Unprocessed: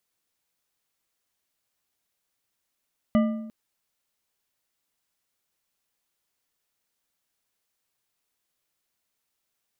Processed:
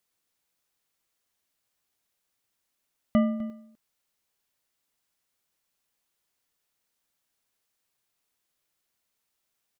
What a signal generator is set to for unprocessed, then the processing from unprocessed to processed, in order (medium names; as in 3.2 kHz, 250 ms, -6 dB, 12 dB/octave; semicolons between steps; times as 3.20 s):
metal hit bar, length 0.35 s, lowest mode 222 Hz, decay 0.91 s, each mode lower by 7 dB, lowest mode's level -15.5 dB
delay 252 ms -17.5 dB